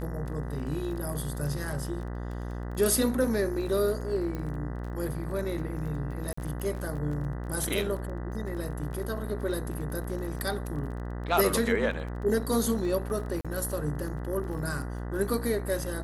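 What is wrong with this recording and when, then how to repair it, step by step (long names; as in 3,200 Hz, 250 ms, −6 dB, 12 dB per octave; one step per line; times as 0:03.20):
mains buzz 60 Hz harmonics 33 −35 dBFS
surface crackle 23 per second −37 dBFS
0:04.35: click −23 dBFS
0:06.33–0:06.37: drop-out 44 ms
0:13.41–0:13.45: drop-out 36 ms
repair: click removal
hum removal 60 Hz, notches 33
repair the gap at 0:06.33, 44 ms
repair the gap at 0:13.41, 36 ms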